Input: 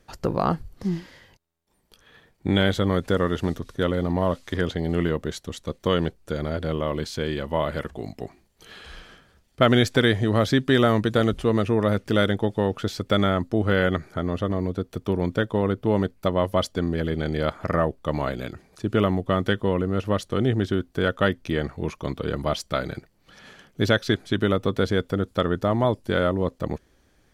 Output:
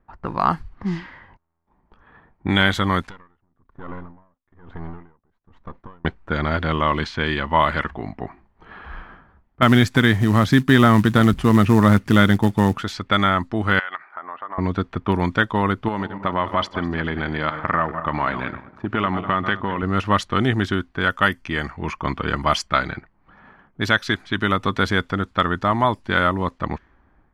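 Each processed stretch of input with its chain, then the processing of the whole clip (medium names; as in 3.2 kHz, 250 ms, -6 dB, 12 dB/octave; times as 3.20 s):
3.01–6.05 s: partial rectifier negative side -12 dB + compression 8:1, threshold -33 dBFS + logarithmic tremolo 1.1 Hz, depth 33 dB
9.62–12.82 s: peaking EQ 150 Hz +11.5 dB 2.7 oct + short-mantissa float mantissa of 4-bit
13.79–14.58 s: Butterworth band-pass 1.6 kHz, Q 0.62 + compression 10:1, threshold -32 dBFS
15.88–19.83 s: backward echo that repeats 101 ms, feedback 48%, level -13.5 dB + bass shelf 68 Hz -11.5 dB + compression 3:1, threshold -24 dBFS
21.10–22.68 s: treble shelf 6.3 kHz +10.5 dB + band-stop 3.8 kHz, Q 5.6
whole clip: level-controlled noise filter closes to 820 Hz, open at -18 dBFS; graphic EQ 125/500/1000/2000 Hz -4/-10/+8/+5 dB; level rider gain up to 9.5 dB; trim -1 dB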